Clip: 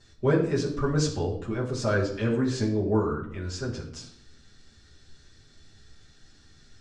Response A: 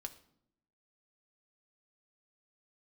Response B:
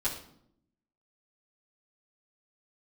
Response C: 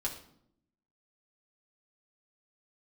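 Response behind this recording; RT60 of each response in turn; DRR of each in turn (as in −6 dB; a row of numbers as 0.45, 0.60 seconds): B; 0.70, 0.70, 0.70 seconds; 6.5, −9.0, −2.5 decibels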